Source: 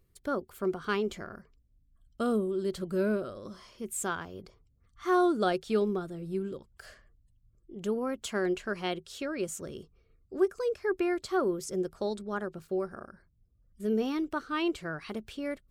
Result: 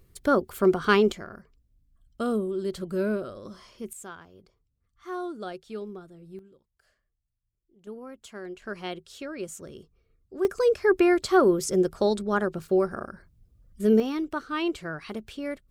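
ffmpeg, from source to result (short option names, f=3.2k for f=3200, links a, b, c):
-af "asetnsamples=n=441:p=0,asendcmd='1.12 volume volume 1.5dB;3.93 volume volume -9dB;6.39 volume volume -18dB;7.87 volume volume -9.5dB;8.62 volume volume -2dB;10.45 volume volume 9dB;14 volume volume 2dB',volume=10dB"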